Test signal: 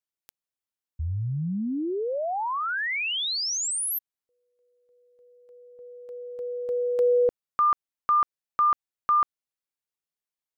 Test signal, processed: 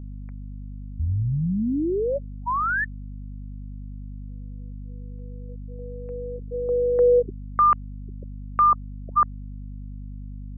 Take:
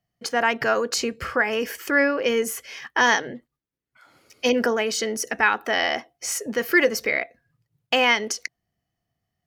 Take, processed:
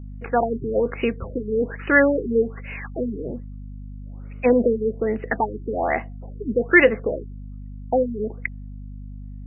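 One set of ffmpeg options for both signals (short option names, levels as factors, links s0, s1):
-af "aeval=exprs='val(0)+0.0112*(sin(2*PI*50*n/s)+sin(2*PI*2*50*n/s)/2+sin(2*PI*3*50*n/s)/3+sin(2*PI*4*50*n/s)/4+sin(2*PI*5*50*n/s)/5)':c=same,afftfilt=real='re*lt(b*sr/1024,420*pow(3000/420,0.5+0.5*sin(2*PI*1.2*pts/sr)))':imag='im*lt(b*sr/1024,420*pow(3000/420,0.5+0.5*sin(2*PI*1.2*pts/sr)))':win_size=1024:overlap=0.75,volume=1.68"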